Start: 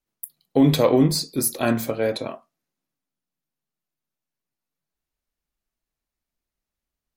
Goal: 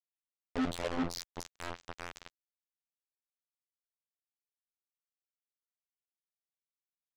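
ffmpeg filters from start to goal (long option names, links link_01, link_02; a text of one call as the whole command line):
ffmpeg -i in.wav -af "afftfilt=real='hypot(re,im)*cos(PI*b)':imag='0':win_size=2048:overlap=0.75,bandreject=frequency=387.2:width_type=h:width=4,bandreject=frequency=774.4:width_type=h:width=4,bandreject=frequency=1161.6:width_type=h:width=4,bandreject=frequency=1548.8:width_type=h:width=4,bandreject=frequency=1936:width_type=h:width=4,bandreject=frequency=2323.2:width_type=h:width=4,bandreject=frequency=2710.4:width_type=h:width=4,bandreject=frequency=3097.6:width_type=h:width=4,bandreject=frequency=3484.8:width_type=h:width=4,aresample=16000,acrusher=bits=2:mix=0:aa=0.5,aresample=44100,lowshelf=frequency=66:gain=4.5,alimiter=limit=-11.5dB:level=0:latency=1,lowshelf=frequency=450:gain=-2.5,asoftclip=type=tanh:threshold=-26.5dB" out.wav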